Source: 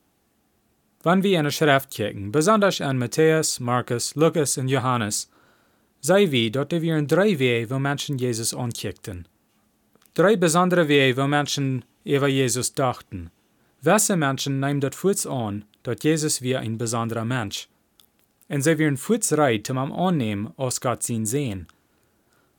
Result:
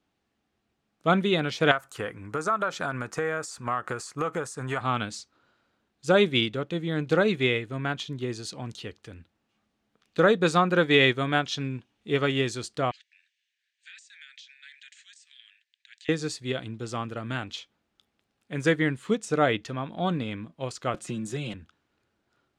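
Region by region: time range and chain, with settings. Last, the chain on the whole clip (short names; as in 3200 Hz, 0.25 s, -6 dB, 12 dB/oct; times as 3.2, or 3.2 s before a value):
1.71–4.81 EQ curve 320 Hz 0 dB, 560 Hz +5 dB, 1300 Hz +13 dB, 3600 Hz -6 dB, 8100 Hz +10 dB + compressor 5:1, threshold -19 dBFS
12.91–16.09 Chebyshev band-pass 1700–8600 Hz, order 5 + compressor 20:1, threshold -35 dBFS
20.94–21.54 comb 5.6 ms + three-band squash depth 70%
whole clip: LPF 3300 Hz 12 dB/oct; high shelf 2300 Hz +10.5 dB; upward expander 1.5:1, over -29 dBFS; gain -3 dB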